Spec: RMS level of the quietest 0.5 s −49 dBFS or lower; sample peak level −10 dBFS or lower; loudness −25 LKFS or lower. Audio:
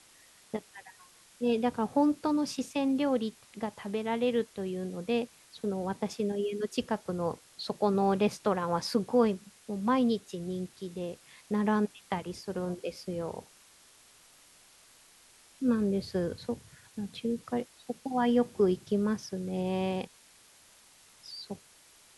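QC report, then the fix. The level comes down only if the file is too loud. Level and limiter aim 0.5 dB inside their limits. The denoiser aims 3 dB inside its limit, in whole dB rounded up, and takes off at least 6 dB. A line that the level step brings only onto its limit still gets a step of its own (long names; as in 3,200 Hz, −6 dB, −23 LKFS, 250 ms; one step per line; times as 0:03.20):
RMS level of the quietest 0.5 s −59 dBFS: in spec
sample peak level −12.5 dBFS: in spec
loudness −31.5 LKFS: in spec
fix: no processing needed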